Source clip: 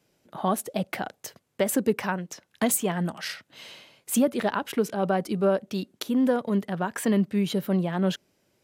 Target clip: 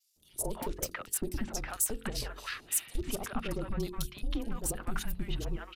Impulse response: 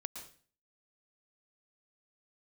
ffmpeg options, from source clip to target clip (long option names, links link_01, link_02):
-filter_complex "[0:a]adynamicequalizer=threshold=0.00398:dfrequency=9900:dqfactor=3.4:tfrequency=9900:tqfactor=3.4:attack=5:release=100:ratio=0.375:range=2:mode=boostabove:tftype=bell,atempo=1.5,acompressor=threshold=-27dB:ratio=6,asoftclip=type=tanh:threshold=-23dB,highshelf=frequency=4800:gain=5.5,acrossover=split=930|3900[link_01][link_02][link_03];[link_01]adelay=160[link_04];[link_02]adelay=320[link_05];[link_04][link_05][link_03]amix=inputs=3:normalize=0,afreqshift=-220,bandreject=frequency=45.17:width_type=h:width=4,bandreject=frequency=90.34:width_type=h:width=4,bandreject=frequency=135.51:width_type=h:width=4,bandreject=frequency=180.68:width_type=h:width=4,bandreject=frequency=225.85:width_type=h:width=4,bandreject=frequency=271.02:width_type=h:width=4,bandreject=frequency=316.19:width_type=h:width=4,bandreject=frequency=361.36:width_type=h:width=4,bandreject=frequency=406.53:width_type=h:width=4,bandreject=frequency=451.7:width_type=h:width=4,bandreject=frequency=496.87:width_type=h:width=4"